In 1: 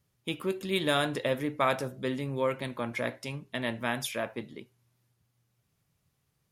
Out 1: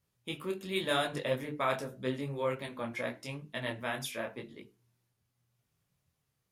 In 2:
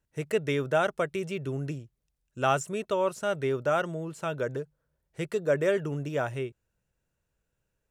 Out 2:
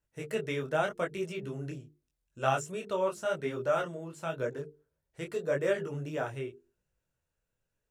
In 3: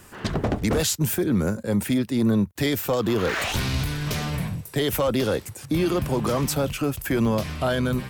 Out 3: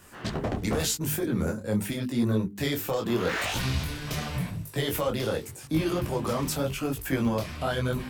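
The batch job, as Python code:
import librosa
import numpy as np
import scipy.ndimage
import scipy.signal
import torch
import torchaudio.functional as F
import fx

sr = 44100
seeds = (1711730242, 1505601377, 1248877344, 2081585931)

y = fx.hum_notches(x, sr, base_hz=50, count=9)
y = fx.detune_double(y, sr, cents=30)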